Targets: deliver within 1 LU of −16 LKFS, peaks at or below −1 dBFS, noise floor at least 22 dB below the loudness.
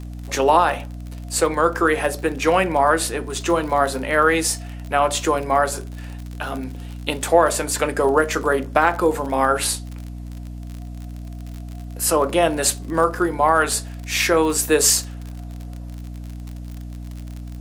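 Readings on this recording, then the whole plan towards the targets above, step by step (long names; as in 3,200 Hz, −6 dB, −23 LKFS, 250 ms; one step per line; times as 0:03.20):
crackle rate 49 per second; mains hum 60 Hz; hum harmonics up to 300 Hz; level of the hum −30 dBFS; integrated loudness −19.5 LKFS; sample peak −2.0 dBFS; target loudness −16.0 LKFS
→ click removal
hum removal 60 Hz, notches 5
level +3.5 dB
brickwall limiter −1 dBFS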